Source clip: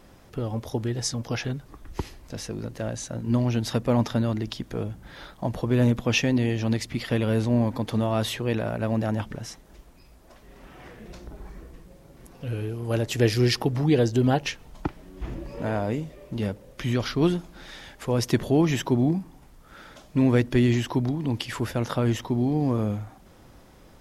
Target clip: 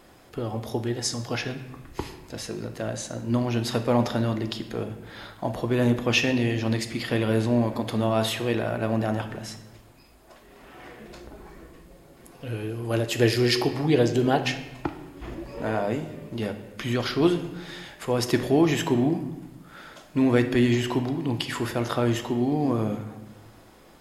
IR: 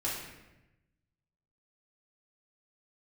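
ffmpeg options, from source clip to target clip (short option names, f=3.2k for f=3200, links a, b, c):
-filter_complex "[0:a]lowshelf=f=160:g=-10.5,bandreject=f=5.8k:w=12,asplit=2[a][b];[1:a]atrim=start_sample=2205[c];[b][c]afir=irnorm=-1:irlink=0,volume=-9.5dB[d];[a][d]amix=inputs=2:normalize=0"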